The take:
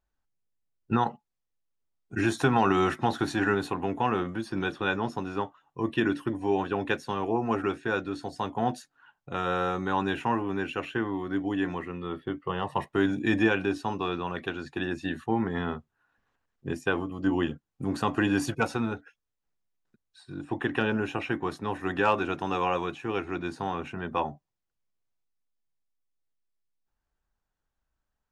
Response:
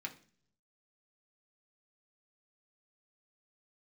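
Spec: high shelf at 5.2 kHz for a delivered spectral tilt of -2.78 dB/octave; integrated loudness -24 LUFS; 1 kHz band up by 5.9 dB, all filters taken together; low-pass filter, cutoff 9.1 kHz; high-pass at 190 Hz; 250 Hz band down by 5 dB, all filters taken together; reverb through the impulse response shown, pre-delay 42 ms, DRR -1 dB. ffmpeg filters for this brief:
-filter_complex "[0:a]highpass=190,lowpass=9100,equalizer=f=250:t=o:g=-6,equalizer=f=1000:t=o:g=8,highshelf=f=5200:g=-7.5,asplit=2[s0][s1];[1:a]atrim=start_sample=2205,adelay=42[s2];[s1][s2]afir=irnorm=-1:irlink=0,volume=1.19[s3];[s0][s3]amix=inputs=2:normalize=0,volume=1.19"

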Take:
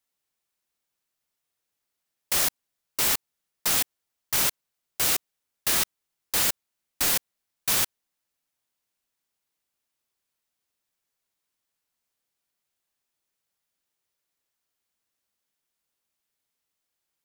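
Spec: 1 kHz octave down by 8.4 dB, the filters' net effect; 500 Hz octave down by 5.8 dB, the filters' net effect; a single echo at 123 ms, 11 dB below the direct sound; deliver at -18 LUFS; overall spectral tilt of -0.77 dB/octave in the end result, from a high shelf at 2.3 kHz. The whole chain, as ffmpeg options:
-af "equalizer=f=500:t=o:g=-4.5,equalizer=f=1000:t=o:g=-8.5,highshelf=f=2300:g=-6.5,aecho=1:1:123:0.282,volume=4.22"

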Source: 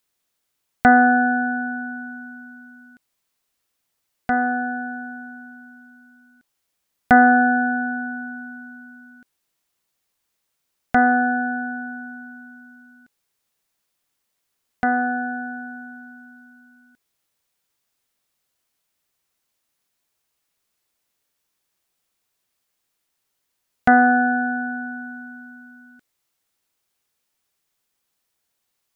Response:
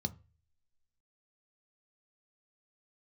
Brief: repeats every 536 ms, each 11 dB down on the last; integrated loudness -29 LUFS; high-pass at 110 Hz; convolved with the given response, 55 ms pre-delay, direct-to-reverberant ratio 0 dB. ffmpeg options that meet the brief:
-filter_complex "[0:a]highpass=110,aecho=1:1:536|1072|1608:0.282|0.0789|0.0221,asplit=2[s0][s1];[1:a]atrim=start_sample=2205,adelay=55[s2];[s1][s2]afir=irnorm=-1:irlink=0,volume=1[s3];[s0][s3]amix=inputs=2:normalize=0,volume=0.141"

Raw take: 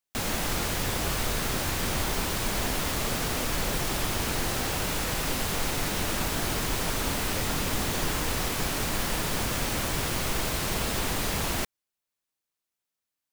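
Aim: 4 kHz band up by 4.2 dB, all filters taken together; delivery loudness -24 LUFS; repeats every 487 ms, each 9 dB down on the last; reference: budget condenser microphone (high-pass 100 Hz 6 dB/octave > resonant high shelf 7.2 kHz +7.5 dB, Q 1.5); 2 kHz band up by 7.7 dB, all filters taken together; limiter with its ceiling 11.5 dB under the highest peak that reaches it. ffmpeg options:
-af "equalizer=f=2000:t=o:g=9,equalizer=f=4000:t=o:g=4,alimiter=limit=0.075:level=0:latency=1,highpass=f=100:p=1,highshelf=f=7200:t=q:w=1.5:g=7.5,aecho=1:1:487|974|1461|1948:0.355|0.124|0.0435|0.0152,volume=1.58"

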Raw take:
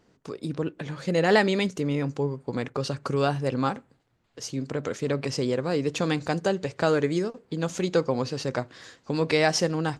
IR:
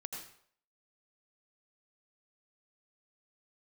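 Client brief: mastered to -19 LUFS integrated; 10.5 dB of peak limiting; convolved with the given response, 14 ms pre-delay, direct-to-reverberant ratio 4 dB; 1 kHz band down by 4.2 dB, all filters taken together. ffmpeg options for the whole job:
-filter_complex "[0:a]equalizer=f=1000:t=o:g=-6,alimiter=limit=0.106:level=0:latency=1,asplit=2[s0][s1];[1:a]atrim=start_sample=2205,adelay=14[s2];[s1][s2]afir=irnorm=-1:irlink=0,volume=0.75[s3];[s0][s3]amix=inputs=2:normalize=0,volume=3.16"

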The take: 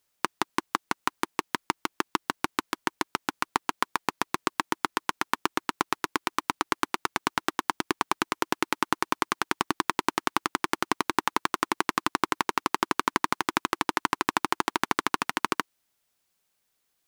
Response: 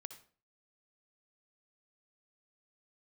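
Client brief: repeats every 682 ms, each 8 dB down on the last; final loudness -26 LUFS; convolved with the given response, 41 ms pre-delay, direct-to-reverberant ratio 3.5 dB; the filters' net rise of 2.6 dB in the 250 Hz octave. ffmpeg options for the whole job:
-filter_complex "[0:a]equalizer=f=250:t=o:g=3.5,aecho=1:1:682|1364|2046|2728|3410:0.398|0.159|0.0637|0.0255|0.0102,asplit=2[s0][s1];[1:a]atrim=start_sample=2205,adelay=41[s2];[s1][s2]afir=irnorm=-1:irlink=0,volume=1.19[s3];[s0][s3]amix=inputs=2:normalize=0,volume=1.06"

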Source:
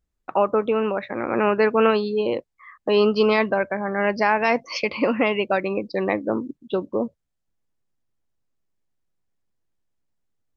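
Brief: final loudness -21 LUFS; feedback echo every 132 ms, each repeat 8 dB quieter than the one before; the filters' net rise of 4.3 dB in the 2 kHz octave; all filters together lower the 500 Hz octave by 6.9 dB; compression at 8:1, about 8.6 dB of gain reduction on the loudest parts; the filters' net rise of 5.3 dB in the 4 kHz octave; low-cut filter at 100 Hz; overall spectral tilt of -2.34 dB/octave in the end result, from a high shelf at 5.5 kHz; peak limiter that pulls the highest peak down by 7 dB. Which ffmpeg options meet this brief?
-af "highpass=100,equalizer=f=500:t=o:g=-9,equalizer=f=2000:t=o:g=4.5,equalizer=f=4000:t=o:g=8,highshelf=f=5500:g=-6,acompressor=threshold=0.0708:ratio=8,alimiter=limit=0.126:level=0:latency=1,aecho=1:1:132|264|396|528|660:0.398|0.159|0.0637|0.0255|0.0102,volume=2.82"

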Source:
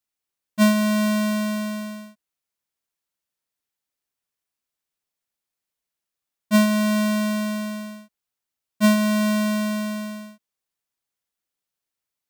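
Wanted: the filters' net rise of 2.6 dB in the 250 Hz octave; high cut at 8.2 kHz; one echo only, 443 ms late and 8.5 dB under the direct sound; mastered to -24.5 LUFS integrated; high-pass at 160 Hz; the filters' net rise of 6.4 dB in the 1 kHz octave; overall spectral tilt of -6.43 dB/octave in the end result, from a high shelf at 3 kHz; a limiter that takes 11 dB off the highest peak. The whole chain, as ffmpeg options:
-af "highpass=160,lowpass=8200,equalizer=f=250:t=o:g=4.5,equalizer=f=1000:t=o:g=7.5,highshelf=f=3000:g=-8,alimiter=limit=0.2:level=0:latency=1,aecho=1:1:443:0.376,volume=0.794"

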